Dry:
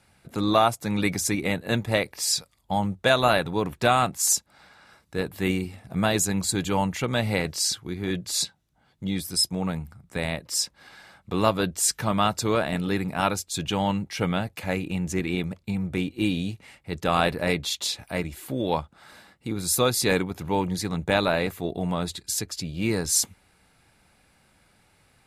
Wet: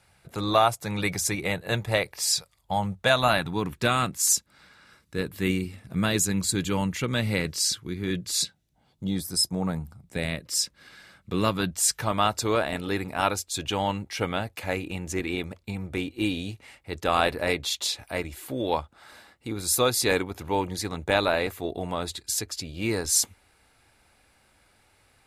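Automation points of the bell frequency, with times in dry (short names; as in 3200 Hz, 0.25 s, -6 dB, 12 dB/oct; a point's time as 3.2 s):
bell -10 dB 0.7 oct
2.77 s 250 Hz
3.86 s 750 Hz
8.37 s 750 Hz
9.26 s 2800 Hz
9.76 s 2800 Hz
10.3 s 810 Hz
11.44 s 810 Hz
12.11 s 170 Hz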